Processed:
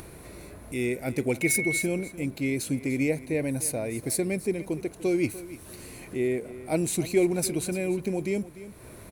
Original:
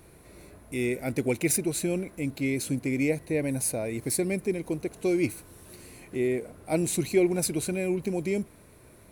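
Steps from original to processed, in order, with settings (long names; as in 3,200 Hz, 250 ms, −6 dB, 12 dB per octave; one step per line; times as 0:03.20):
0:01.41–0:01.81: steady tone 2,200 Hz −27 dBFS
single-tap delay 295 ms −16 dB
upward compression, threshold −36 dBFS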